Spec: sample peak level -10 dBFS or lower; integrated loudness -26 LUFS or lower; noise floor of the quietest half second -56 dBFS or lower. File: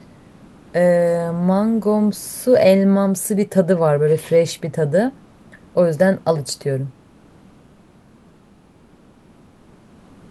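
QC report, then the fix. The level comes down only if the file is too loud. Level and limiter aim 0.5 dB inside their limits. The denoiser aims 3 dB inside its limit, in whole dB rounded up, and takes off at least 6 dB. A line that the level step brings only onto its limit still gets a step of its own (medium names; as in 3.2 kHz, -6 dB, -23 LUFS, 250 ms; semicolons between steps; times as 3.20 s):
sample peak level -3.0 dBFS: fail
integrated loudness -17.5 LUFS: fail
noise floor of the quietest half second -50 dBFS: fail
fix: trim -9 dB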